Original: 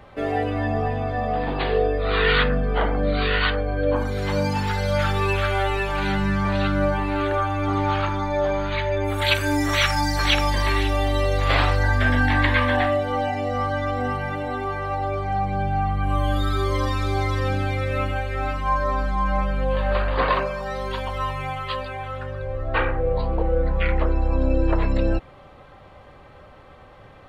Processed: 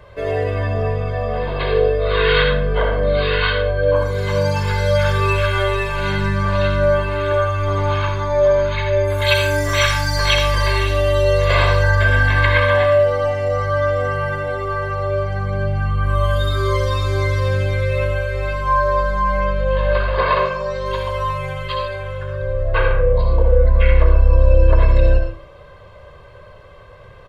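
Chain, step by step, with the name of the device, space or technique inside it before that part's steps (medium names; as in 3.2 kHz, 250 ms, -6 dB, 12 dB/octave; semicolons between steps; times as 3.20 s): 19.40–20.86 s: low-pass 7.5 kHz 24 dB/octave; microphone above a desk (comb 1.9 ms, depth 79%; reverberation RT60 0.45 s, pre-delay 58 ms, DRR 4 dB)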